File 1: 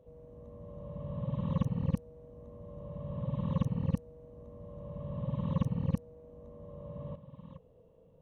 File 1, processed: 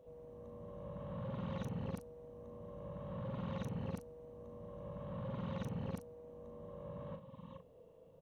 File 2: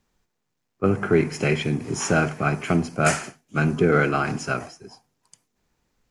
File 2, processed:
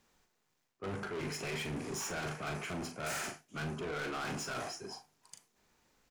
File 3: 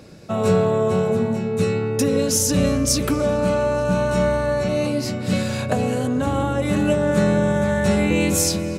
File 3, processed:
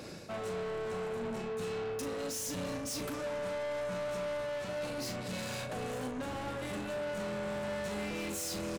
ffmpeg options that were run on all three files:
-filter_complex "[0:a]lowshelf=f=230:g=-10,areverse,acompressor=threshold=0.0316:ratio=6,areverse,asoftclip=type=tanh:threshold=0.0112,asplit=2[s0][s1];[s1]adelay=39,volume=0.398[s2];[s0][s2]amix=inputs=2:normalize=0,volume=1.33"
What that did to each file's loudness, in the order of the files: -10.0 LU, -16.0 LU, -17.0 LU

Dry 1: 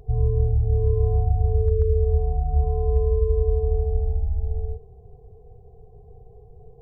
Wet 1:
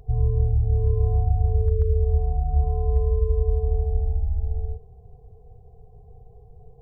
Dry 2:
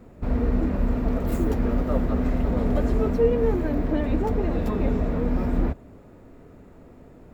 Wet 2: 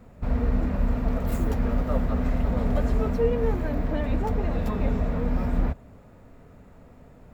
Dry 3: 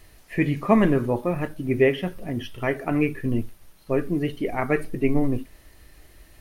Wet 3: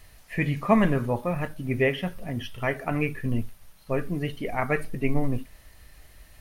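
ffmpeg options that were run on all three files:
-af "equalizer=f=340:t=o:w=0.71:g=-9.5"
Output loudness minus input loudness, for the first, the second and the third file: -0.5 LU, -2.0 LU, -3.0 LU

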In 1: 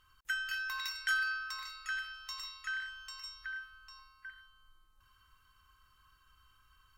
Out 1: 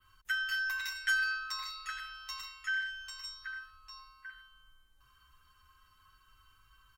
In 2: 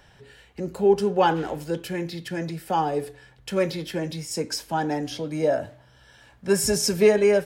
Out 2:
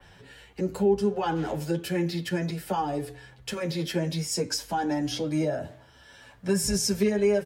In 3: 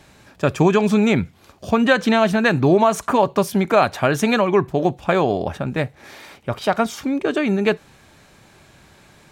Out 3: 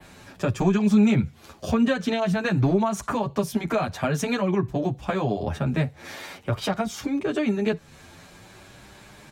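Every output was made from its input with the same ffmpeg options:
-filter_complex "[0:a]adynamicequalizer=threshold=0.0112:dfrequency=6100:dqfactor=1.2:tfrequency=6100:tqfactor=1.2:attack=5:release=100:ratio=0.375:range=1.5:mode=boostabove:tftype=bell,acrossover=split=190[s0][s1];[s1]acompressor=threshold=0.0355:ratio=3[s2];[s0][s2]amix=inputs=2:normalize=0,acrossover=split=450[s3][s4];[s3]volume=7.08,asoftclip=hard,volume=0.141[s5];[s5][s4]amix=inputs=2:normalize=0,asplit=2[s6][s7];[s7]adelay=8.8,afreqshift=0.49[s8];[s6][s8]amix=inputs=2:normalize=1,volume=1.78"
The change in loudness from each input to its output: +2.0 LU, -3.5 LU, -6.0 LU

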